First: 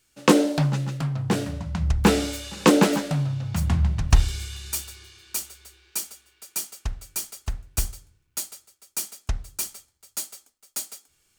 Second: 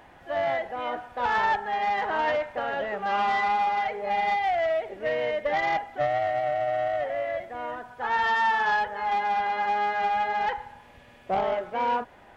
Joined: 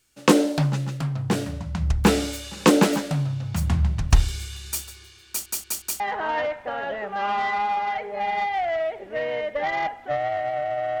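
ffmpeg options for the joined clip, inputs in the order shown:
ffmpeg -i cue0.wav -i cue1.wav -filter_complex "[0:a]apad=whole_dur=11,atrim=end=11,asplit=4[link_01][link_02][link_03][link_04];[link_01]atrim=end=5.462[link_05];[link_02]atrim=start=5.278:end=5.462[link_06];[link_03]atrim=start=5.278:end=5.462[link_07];[link_04]atrim=start=5.278:end=5.462[link_08];[1:a]atrim=start=1.898:end=6.9[link_09];[link_05][link_06]acrossfade=duration=0.004:curve1=hsin:curve2=hsin[link_10];[link_10][link_07]acrossfade=duration=0.004:curve1=hsin:curve2=hsin[link_11];[link_11][link_08]acrossfade=duration=0.004:curve1=hsin:curve2=hsin[link_12];[link_12][link_09]acrossfade=duration=0.004:curve1=hsin:curve2=hsin" out.wav

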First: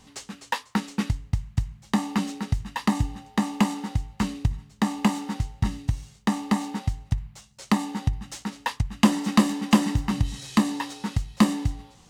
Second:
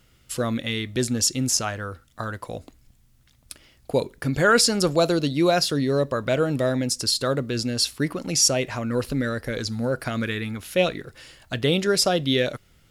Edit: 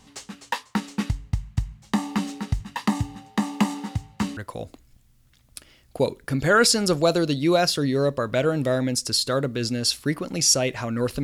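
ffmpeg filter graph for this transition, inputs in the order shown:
ffmpeg -i cue0.wav -i cue1.wav -filter_complex "[0:a]asettb=1/sr,asplit=3[link_01][link_02][link_03];[link_01]atrim=end=2.604[link_04];[link_02]atrim=start=2.6:end=4.37,asetpts=PTS-STARTPTS,afade=type=in:duration=0.004:curve=qsin,afade=type=out:start_time=1.766:duration=0.004:curve=qsin,highpass=frequency=75:width=0.5412,highpass=frequency=75:width=1.3066[link_05];[link_03]atrim=start=4.366[link_06];[link_04][link_05]acrossfade=duration=0.004:curve1=hsin:curve2=qsin[link_07];[link_07][link_06]acrossfade=duration=0.004:curve1=qsin:curve2=hsin,apad=whole_dur=11.23,atrim=end=11.23,atrim=end=4.372[link_08];[1:a]atrim=start=2.308:end=9.17[link_09];[link_08][link_09]acrossfade=duration=0.004:curve1=hsin:curve2=hsin" out.wav

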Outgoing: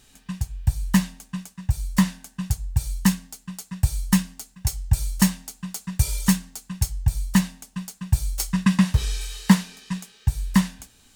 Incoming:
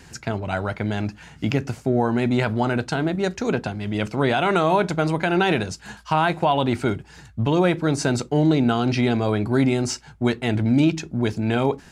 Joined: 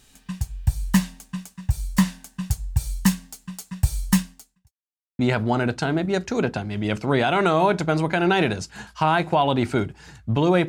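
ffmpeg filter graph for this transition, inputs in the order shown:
ffmpeg -i cue0.wav -i cue1.wav -filter_complex "[0:a]apad=whole_dur=10.68,atrim=end=10.68,asplit=2[link_01][link_02];[link_01]atrim=end=4.73,asetpts=PTS-STARTPTS,afade=type=out:start_time=4.19:duration=0.54:curve=qua[link_03];[link_02]atrim=start=4.73:end=5.19,asetpts=PTS-STARTPTS,volume=0[link_04];[1:a]atrim=start=2.29:end=7.78,asetpts=PTS-STARTPTS,afade=type=in:duration=0.004:curve=hsin[link_05];[link_03][link_04][link_05]concat=n=3:v=0:a=1" out.wav

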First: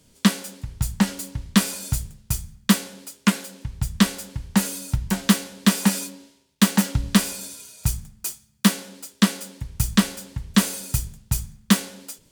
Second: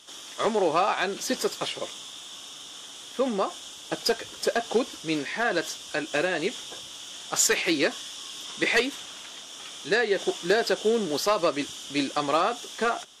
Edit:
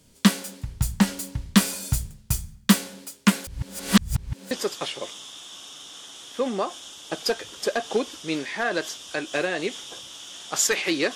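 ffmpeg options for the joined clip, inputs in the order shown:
ffmpeg -i cue0.wav -i cue1.wav -filter_complex "[0:a]apad=whole_dur=11.15,atrim=end=11.15,asplit=2[link_01][link_02];[link_01]atrim=end=3.472[link_03];[link_02]atrim=start=3.468:end=4.512,asetpts=PTS-STARTPTS,areverse[link_04];[1:a]atrim=start=1.308:end=7.95[link_05];[link_03][link_04]acrossfade=duration=0.004:curve1=hsin:curve2=hsin[link_06];[link_06][link_05]acrossfade=duration=0.004:curve1=hsin:curve2=hsin" out.wav

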